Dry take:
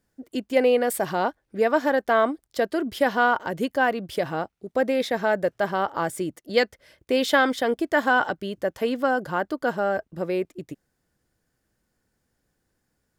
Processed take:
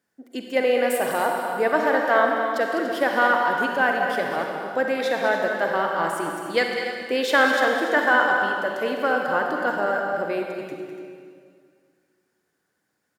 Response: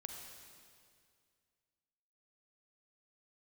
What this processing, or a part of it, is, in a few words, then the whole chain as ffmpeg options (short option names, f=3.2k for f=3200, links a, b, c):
stadium PA: -filter_complex "[0:a]highpass=200,equalizer=f=1.6k:t=o:w=1.6:g=5,aecho=1:1:204.1|288.6:0.355|0.251[a];[1:a]atrim=start_sample=2205[b];[a][b]afir=irnorm=-1:irlink=0,volume=2.5dB"